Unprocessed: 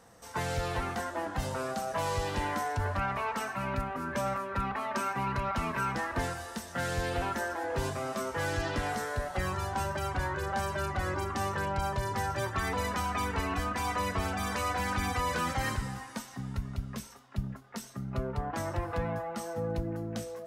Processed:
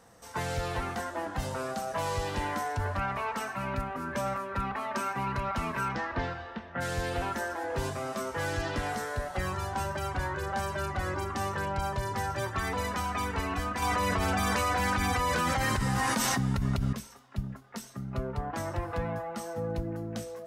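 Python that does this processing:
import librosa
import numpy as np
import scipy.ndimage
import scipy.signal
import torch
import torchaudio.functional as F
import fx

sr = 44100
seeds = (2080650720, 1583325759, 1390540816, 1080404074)

y = fx.lowpass(x, sr, hz=fx.line((5.88, 6400.0), (6.8, 2500.0)), slope=24, at=(5.88, 6.8), fade=0.02)
y = fx.env_flatten(y, sr, amount_pct=100, at=(13.82, 16.93))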